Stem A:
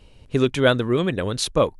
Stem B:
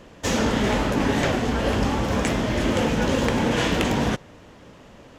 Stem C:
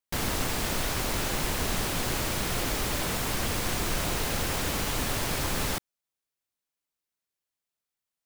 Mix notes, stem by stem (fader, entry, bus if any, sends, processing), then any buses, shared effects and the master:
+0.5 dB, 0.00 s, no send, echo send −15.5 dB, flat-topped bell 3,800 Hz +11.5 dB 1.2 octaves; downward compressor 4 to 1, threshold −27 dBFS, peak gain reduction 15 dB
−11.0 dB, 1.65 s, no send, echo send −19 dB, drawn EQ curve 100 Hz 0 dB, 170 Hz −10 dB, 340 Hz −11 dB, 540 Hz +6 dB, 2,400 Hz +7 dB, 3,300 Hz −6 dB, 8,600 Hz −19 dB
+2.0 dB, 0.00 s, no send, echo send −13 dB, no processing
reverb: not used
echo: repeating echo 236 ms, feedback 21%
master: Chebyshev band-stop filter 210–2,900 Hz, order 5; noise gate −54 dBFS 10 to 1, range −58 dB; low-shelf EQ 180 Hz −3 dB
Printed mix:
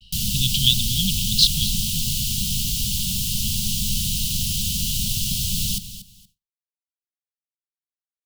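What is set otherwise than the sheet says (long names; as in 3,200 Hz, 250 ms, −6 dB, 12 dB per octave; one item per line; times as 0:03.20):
stem A: missing downward compressor 4 to 1, threshold −27 dBFS, peak gain reduction 15 dB
stem B: muted
stem C +2.0 dB → +9.0 dB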